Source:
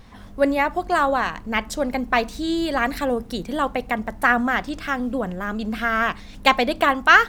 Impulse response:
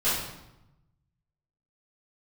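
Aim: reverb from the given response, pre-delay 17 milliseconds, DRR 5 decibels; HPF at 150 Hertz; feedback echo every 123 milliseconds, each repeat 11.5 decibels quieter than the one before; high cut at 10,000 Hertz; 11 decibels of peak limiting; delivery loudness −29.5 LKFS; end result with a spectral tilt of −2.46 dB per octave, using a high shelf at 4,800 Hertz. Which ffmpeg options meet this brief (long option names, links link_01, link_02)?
-filter_complex "[0:a]highpass=150,lowpass=10000,highshelf=frequency=4800:gain=-5,alimiter=limit=-12dB:level=0:latency=1,aecho=1:1:123|246|369:0.266|0.0718|0.0194,asplit=2[link_01][link_02];[1:a]atrim=start_sample=2205,adelay=17[link_03];[link_02][link_03]afir=irnorm=-1:irlink=0,volume=-17.5dB[link_04];[link_01][link_04]amix=inputs=2:normalize=0,volume=-6dB"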